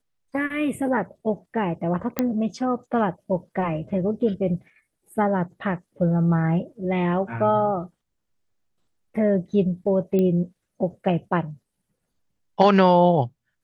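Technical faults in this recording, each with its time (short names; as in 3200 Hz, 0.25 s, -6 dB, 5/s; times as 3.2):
2.19 pop -8 dBFS
10.19 pop -14 dBFS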